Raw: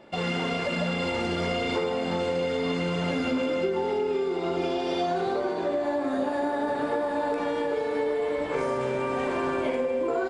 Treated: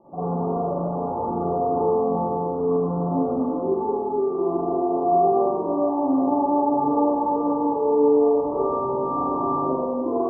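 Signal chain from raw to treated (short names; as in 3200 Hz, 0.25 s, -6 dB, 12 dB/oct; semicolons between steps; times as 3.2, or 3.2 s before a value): rippled Chebyshev low-pass 1200 Hz, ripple 6 dB; spring tank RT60 1 s, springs 41/48 ms, chirp 75 ms, DRR -9 dB; gain -1.5 dB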